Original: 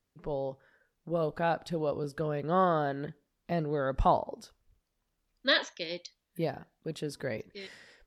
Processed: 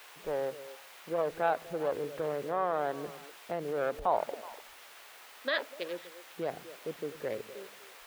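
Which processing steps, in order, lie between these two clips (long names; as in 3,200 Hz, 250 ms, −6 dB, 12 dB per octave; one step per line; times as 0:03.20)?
adaptive Wiener filter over 41 samples
low-shelf EQ 470 Hz +8 dB
in parallel at −11 dB: bit-depth reduction 6 bits, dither triangular
on the sum: brickwall limiter −19 dBFS, peak gain reduction 10.5 dB
three-way crossover with the lows and the highs turned down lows −23 dB, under 450 Hz, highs −13 dB, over 3,300 Hz
on a send: echo through a band-pass that steps 124 ms, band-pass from 160 Hz, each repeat 1.4 octaves, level −10 dB
on the sum: level +2.5 dB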